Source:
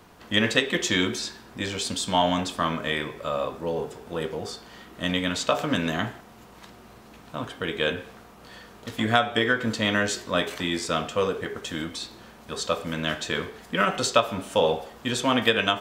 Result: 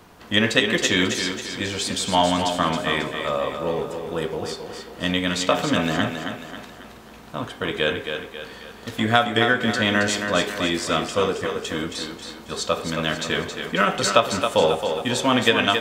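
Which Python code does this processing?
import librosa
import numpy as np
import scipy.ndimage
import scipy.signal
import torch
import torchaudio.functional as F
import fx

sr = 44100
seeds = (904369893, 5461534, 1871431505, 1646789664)

y = fx.echo_thinned(x, sr, ms=271, feedback_pct=46, hz=150.0, wet_db=-6.5)
y = F.gain(torch.from_numpy(y), 3.0).numpy()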